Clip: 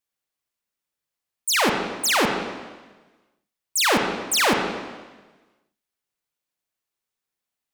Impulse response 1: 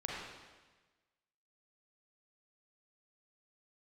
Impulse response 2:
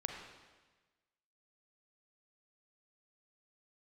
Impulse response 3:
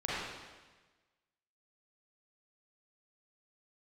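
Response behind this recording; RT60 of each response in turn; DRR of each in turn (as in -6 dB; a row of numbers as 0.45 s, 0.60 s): 2; 1.3 s, 1.3 s, 1.3 s; -4.0 dB, 2.0 dB, -8.5 dB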